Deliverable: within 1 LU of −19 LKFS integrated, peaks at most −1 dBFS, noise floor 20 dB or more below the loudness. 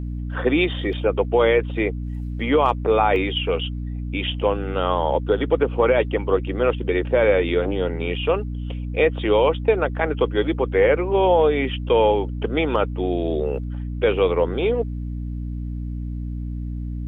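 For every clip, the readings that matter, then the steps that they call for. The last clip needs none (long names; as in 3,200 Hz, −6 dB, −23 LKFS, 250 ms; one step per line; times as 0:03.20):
number of dropouts 1; longest dropout 1.1 ms; mains hum 60 Hz; hum harmonics up to 300 Hz; level of the hum −25 dBFS; integrated loudness −21.5 LKFS; sample peak −5.0 dBFS; target loudness −19.0 LKFS
→ repair the gap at 0:03.16, 1.1 ms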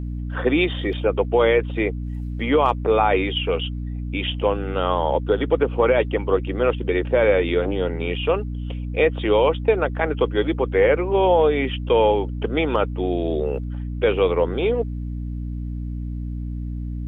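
number of dropouts 0; mains hum 60 Hz; hum harmonics up to 300 Hz; level of the hum −25 dBFS
→ mains-hum notches 60/120/180/240/300 Hz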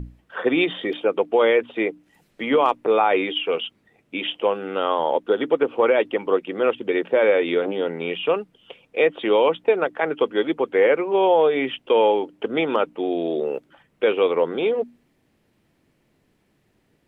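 mains hum none found; integrated loudness −21.5 LKFS; sample peak −5.5 dBFS; target loudness −19.0 LKFS
→ level +2.5 dB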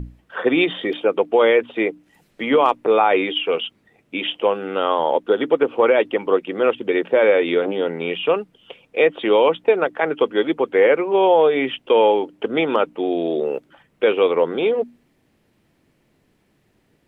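integrated loudness −19.0 LKFS; sample peak −3.0 dBFS; background noise floor −63 dBFS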